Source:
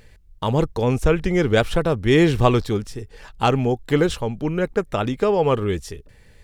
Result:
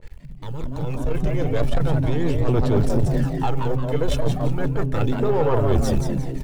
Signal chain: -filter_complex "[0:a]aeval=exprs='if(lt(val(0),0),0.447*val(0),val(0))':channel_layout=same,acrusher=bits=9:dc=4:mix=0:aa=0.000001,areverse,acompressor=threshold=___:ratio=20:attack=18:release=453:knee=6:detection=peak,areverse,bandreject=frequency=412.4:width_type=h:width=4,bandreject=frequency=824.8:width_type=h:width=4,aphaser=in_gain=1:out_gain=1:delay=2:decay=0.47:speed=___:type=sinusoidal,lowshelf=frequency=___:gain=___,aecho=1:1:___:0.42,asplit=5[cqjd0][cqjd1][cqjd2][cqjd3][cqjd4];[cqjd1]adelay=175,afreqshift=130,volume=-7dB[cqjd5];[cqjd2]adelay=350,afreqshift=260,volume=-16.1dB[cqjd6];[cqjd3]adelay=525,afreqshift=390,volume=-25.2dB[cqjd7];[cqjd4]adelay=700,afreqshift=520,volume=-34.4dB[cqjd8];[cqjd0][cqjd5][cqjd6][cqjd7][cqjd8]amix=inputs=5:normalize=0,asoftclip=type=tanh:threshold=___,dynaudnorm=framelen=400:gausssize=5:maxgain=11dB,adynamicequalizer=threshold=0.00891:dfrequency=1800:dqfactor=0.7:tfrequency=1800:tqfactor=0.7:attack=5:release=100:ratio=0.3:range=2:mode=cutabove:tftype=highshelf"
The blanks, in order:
-31dB, 0.37, 130, 7.5, 2.3, -23dB